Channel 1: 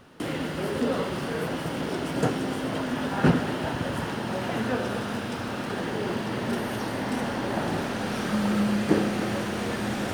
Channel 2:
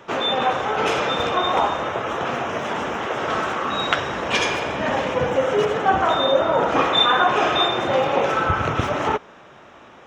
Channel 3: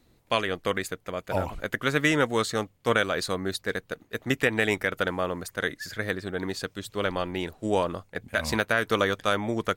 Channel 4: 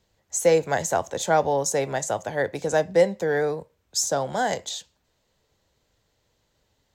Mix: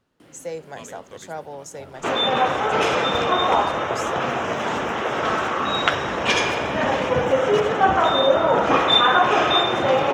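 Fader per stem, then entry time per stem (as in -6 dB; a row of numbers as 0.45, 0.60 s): -20.0, +1.0, -17.5, -13.0 dB; 0.00, 1.95, 0.45, 0.00 s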